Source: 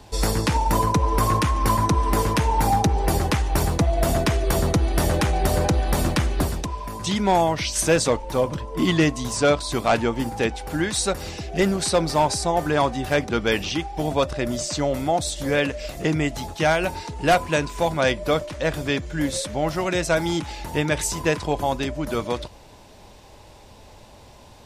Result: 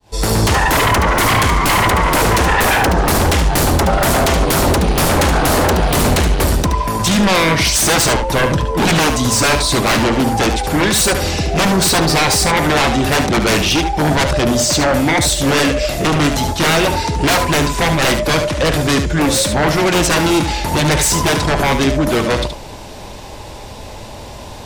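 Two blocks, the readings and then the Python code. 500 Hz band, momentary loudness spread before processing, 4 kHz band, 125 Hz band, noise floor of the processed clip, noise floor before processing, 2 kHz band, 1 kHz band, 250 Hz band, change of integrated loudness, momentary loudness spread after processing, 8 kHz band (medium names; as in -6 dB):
+6.5 dB, 6 LU, +12.5 dB, +7.5 dB, -32 dBFS, -47 dBFS, +11.5 dB, +8.0 dB, +8.5 dB, +9.0 dB, 5 LU, +12.0 dB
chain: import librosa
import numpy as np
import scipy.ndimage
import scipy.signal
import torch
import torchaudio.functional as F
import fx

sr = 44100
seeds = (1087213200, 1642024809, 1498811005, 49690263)

y = fx.fade_in_head(x, sr, length_s=0.51)
y = fx.fold_sine(y, sr, drive_db=13, ceiling_db=-8.5)
y = y + 10.0 ** (-8.0 / 20.0) * np.pad(y, (int(73 * sr / 1000.0), 0))[:len(y)]
y = y * librosa.db_to_amplitude(-2.0)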